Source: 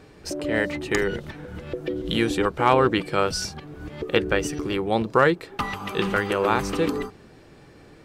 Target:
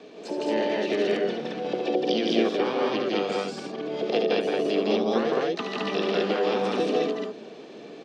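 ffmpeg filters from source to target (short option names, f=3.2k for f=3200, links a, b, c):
-filter_complex "[0:a]acrossover=split=310|2500[a][b][c];[a]acompressor=threshold=-35dB:ratio=4[d];[b]acompressor=threshold=-33dB:ratio=4[e];[c]acompressor=threshold=-45dB:ratio=4[f];[d][e][f]amix=inputs=3:normalize=0,highpass=f=210:w=0.5412,highpass=f=210:w=1.3066,equalizer=f=220:t=q:w=4:g=7,equalizer=f=440:t=q:w=4:g=8,equalizer=f=880:t=q:w=4:g=-3,equalizer=f=1.4k:t=q:w=4:g=-5,equalizer=f=2k:t=q:w=4:g=-3,equalizer=f=2.9k:t=q:w=4:g=-3,lowpass=f=3.5k:w=0.5412,lowpass=f=3.5k:w=1.3066,aexciter=amount=3.8:drive=2.6:freq=2.7k,asplit=2[g][h];[h]aecho=0:1:72.89|163.3|215.7:0.501|0.794|0.891[i];[g][i]amix=inputs=2:normalize=0,asplit=2[j][k];[k]asetrate=66075,aresample=44100,atempo=0.66742,volume=-7dB[l];[j][l]amix=inputs=2:normalize=0"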